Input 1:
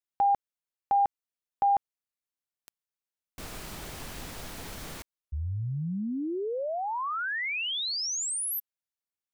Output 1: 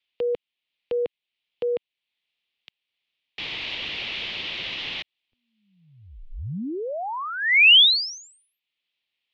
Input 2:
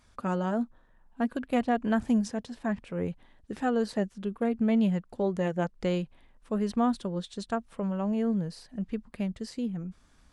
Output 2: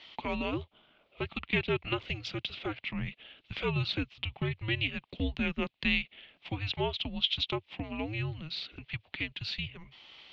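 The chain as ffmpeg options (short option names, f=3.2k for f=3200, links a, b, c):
-filter_complex "[0:a]acrossover=split=190[a][b];[b]acompressor=threshold=-42dB:ratio=1.5:attack=0.14:release=726:knee=2.83:detection=peak[c];[a][c]amix=inputs=2:normalize=0,highpass=f=400:t=q:w=0.5412,highpass=f=400:t=q:w=1.307,lowpass=f=3.6k:t=q:w=0.5176,lowpass=f=3.6k:t=q:w=0.7071,lowpass=f=3.6k:t=q:w=1.932,afreqshift=-320,aexciter=amount=10.2:drive=4.8:freq=2.2k,volume=6.5dB"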